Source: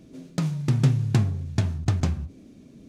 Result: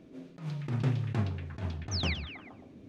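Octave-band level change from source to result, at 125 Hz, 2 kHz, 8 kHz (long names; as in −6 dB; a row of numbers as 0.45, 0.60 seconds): −10.0, 0.0, −6.5 decibels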